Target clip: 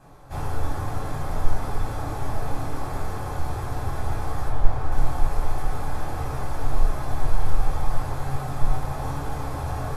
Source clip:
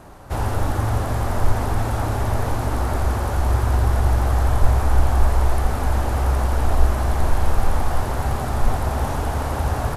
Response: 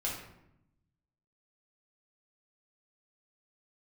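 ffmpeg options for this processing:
-filter_complex "[0:a]asettb=1/sr,asplit=3[a][b][c];[a]atrim=end=4.484[d];[b]atrim=start=4.48:end=4.92,asetpts=PTS-STARTPTS,afade=t=in:d=0.004:c=qsin,afade=t=out:st=0.436:d=0.004:c=qsin,highshelf=f=5.1k:g=-11.5[e];[c]atrim=start=4.916[f];[d][e]acrossfade=d=0.004:c1=hsin:c2=qsin[g];[g][f]acrossfade=d=0.004:c1=qsin:c2=hsin[h];[1:a]atrim=start_sample=2205,atrim=end_sample=4410,asetrate=70560,aresample=44100[i];[h][i]afir=irnorm=-1:irlink=0,volume=-6dB"

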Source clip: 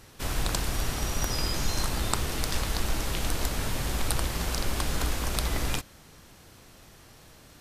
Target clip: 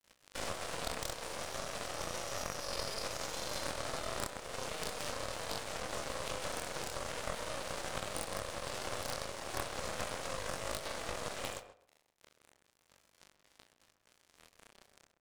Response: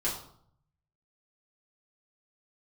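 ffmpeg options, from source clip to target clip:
-filter_complex "[0:a]highpass=f=540:t=q:w=3.9,acrusher=bits=6:mix=0:aa=0.5,acompressor=threshold=-42dB:ratio=3,asetrate=88200,aresample=44100,atempo=0.5,aeval=exprs='val(0)+0.00126*(sin(2*PI*50*n/s)+sin(2*PI*2*50*n/s)/2+sin(2*PI*3*50*n/s)/3+sin(2*PI*4*50*n/s)/4+sin(2*PI*5*50*n/s)/5)':c=same,asetrate=22050,aresample=44100,flanger=delay=19.5:depth=6.8:speed=0.37,asplit=2[a][b];[b]aecho=0:1:29|61:0.168|0.178[c];[a][c]amix=inputs=2:normalize=0,aeval=exprs='sgn(val(0))*max(abs(val(0))-0.00126,0)':c=same,asplit=2[d][e];[e]adelay=131,lowpass=f=1.5k:p=1,volume=-7dB,asplit=2[f][g];[g]adelay=131,lowpass=f=1.5k:p=1,volume=0.24,asplit=2[h][i];[i]adelay=131,lowpass=f=1.5k:p=1,volume=0.24[j];[f][h][j]amix=inputs=3:normalize=0[k];[d][k]amix=inputs=2:normalize=0,aeval=exprs='0.0668*(cos(1*acos(clip(val(0)/0.0668,-1,1)))-cos(1*PI/2))+0.0188*(cos(8*acos(clip(val(0)/0.0668,-1,1)))-cos(8*PI/2))':c=same,volume=2.5dB"

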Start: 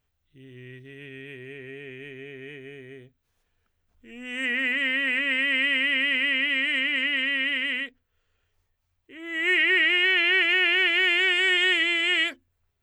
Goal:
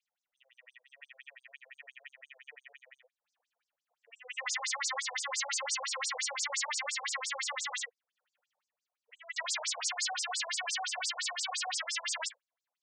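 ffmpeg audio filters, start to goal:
-af "aeval=exprs='(mod(12.6*val(0)+1,2)-1)/12.6':c=same,afftfilt=real='re*between(b*sr/1024,630*pow(6700/630,0.5+0.5*sin(2*PI*5.8*pts/sr))/1.41,630*pow(6700/630,0.5+0.5*sin(2*PI*5.8*pts/sr))*1.41)':imag='im*between(b*sr/1024,630*pow(6700/630,0.5+0.5*sin(2*PI*5.8*pts/sr))/1.41,630*pow(6700/630,0.5+0.5*sin(2*PI*5.8*pts/sr))*1.41)':win_size=1024:overlap=0.75"

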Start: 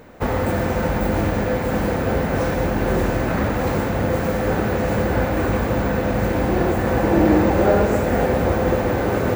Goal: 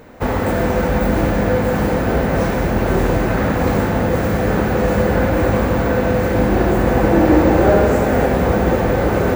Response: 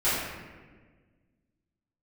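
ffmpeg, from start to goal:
-filter_complex "[0:a]asplit=2[a][b];[1:a]atrim=start_sample=2205,asetrate=30870,aresample=44100,adelay=13[c];[b][c]afir=irnorm=-1:irlink=0,volume=-20.5dB[d];[a][d]amix=inputs=2:normalize=0,volume=2dB"

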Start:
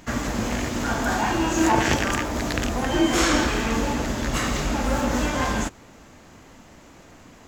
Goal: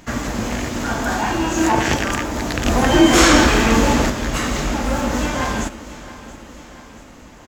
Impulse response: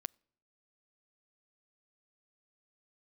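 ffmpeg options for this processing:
-filter_complex "[0:a]asettb=1/sr,asplit=3[a][b][c];[a]atrim=end=2.664[d];[b]atrim=start=2.66:end=4.1,asetpts=PTS-STARTPTS,afade=t=in:d=0.004:c=qsin,afade=t=out:st=1.436:d=0.004:c=qsin,acontrast=73[e];[c]atrim=start=4.096[f];[d][e]acrossfade=d=0.004:c1=hsin:c2=qsin[g];[g][f]acrossfade=d=0.004:c1=qsin:c2=hsin,aecho=1:1:678|1356|2034|2712|3390:0.133|0.0773|0.0449|0.026|0.0151,volume=2.5dB"

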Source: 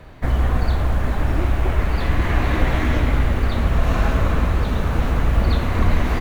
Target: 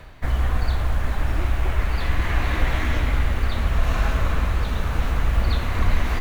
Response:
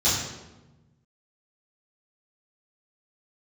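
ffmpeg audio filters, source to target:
-af "equalizer=f=260:w=0.32:g=-8,areverse,acompressor=mode=upward:threshold=-24dB:ratio=2.5,areverse"

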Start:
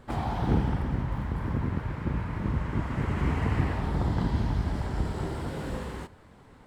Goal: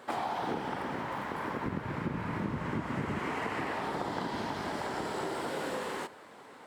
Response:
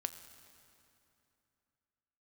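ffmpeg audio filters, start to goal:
-af "asetnsamples=n=441:p=0,asendcmd='1.66 highpass f 180;3.19 highpass f 390',highpass=420,acompressor=threshold=-38dB:ratio=4,volume=6.5dB"

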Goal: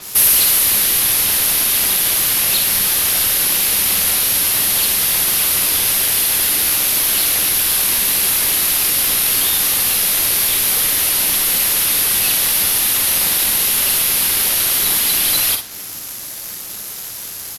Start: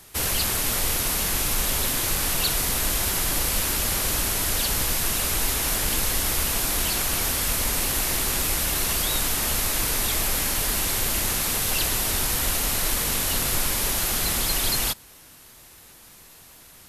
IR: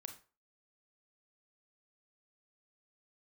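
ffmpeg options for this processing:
-filter_complex "[0:a]highpass=f=130:p=1,equalizer=f=900:t=o:w=1.7:g=-5.5,acrossover=split=2200[a][b];[a]acompressor=threshold=-43dB:ratio=6[c];[c][b]amix=inputs=2:normalize=0,aexciter=amount=13.6:drive=7:freq=11k,apsyclip=11dB,adynamicsmooth=sensitivity=8:basefreq=2.5k,asplit=2[d][e];[e]adelay=49,volume=-8dB[f];[d][f]amix=inputs=2:normalize=0,asplit=2[g][h];[h]aecho=0:1:10|58:0.168|0.251[i];[g][i]amix=inputs=2:normalize=0,asetrate=42336,aresample=44100,adynamicequalizer=threshold=0.0501:dfrequency=6000:dqfactor=0.7:tfrequency=6000:tqfactor=0.7:attack=5:release=100:ratio=0.375:range=3.5:mode=cutabove:tftype=highshelf"

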